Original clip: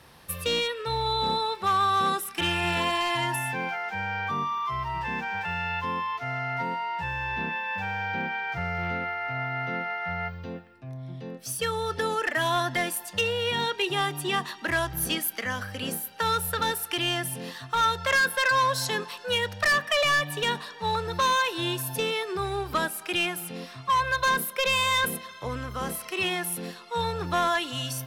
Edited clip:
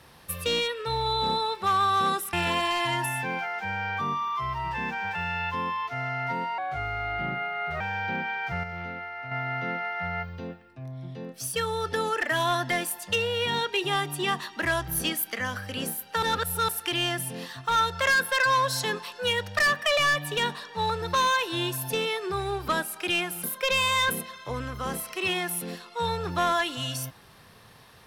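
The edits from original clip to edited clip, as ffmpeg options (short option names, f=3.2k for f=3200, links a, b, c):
-filter_complex "[0:a]asplit=9[a][b][c][d][e][f][g][h][i];[a]atrim=end=2.332[j];[b]atrim=start=2.628:end=6.884[k];[c]atrim=start=6.88:end=7.86,asetpts=PTS-STARTPTS,asetrate=35280,aresample=44100,atrim=end_sample=54022,asetpts=PTS-STARTPTS[l];[d]atrim=start=7.856:end=8.692[m];[e]atrim=start=8.688:end=9.372,asetpts=PTS-STARTPTS,volume=-6dB[n];[f]atrim=start=9.368:end=16.282[o];[g]atrim=start=16.278:end=16.742,asetpts=PTS-STARTPTS,areverse[p];[h]atrim=start=16.738:end=23.492[q];[i]atrim=start=24.388[r];[j][k]acrossfade=d=0.004:c1=hsin:c2=hsin[s];[s][l]acrossfade=d=0.004:c1=hsin:c2=hsin[t];[t][m]acrossfade=d=0.004:c1=hsin:c2=hsin[u];[u][n]acrossfade=d=0.004:c1=hsin:c2=hsin[v];[v][o]acrossfade=d=0.004:c1=hsin:c2=hsin[w];[w][p]acrossfade=d=0.004:c1=hsin:c2=hsin[x];[x][q]acrossfade=d=0.004:c1=hsin:c2=hsin[y];[y][r]acrossfade=d=0.004:c1=hsin:c2=hsin"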